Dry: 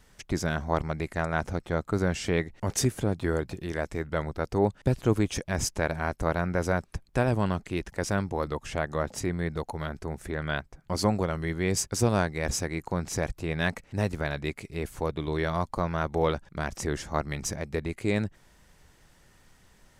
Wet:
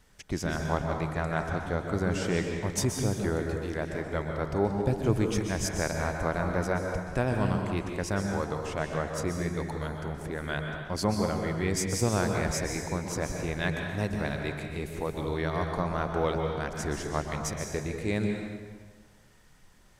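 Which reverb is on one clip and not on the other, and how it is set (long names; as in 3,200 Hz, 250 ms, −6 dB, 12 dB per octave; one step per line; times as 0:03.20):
dense smooth reverb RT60 1.5 s, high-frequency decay 0.8×, pre-delay 115 ms, DRR 2.5 dB
level −3 dB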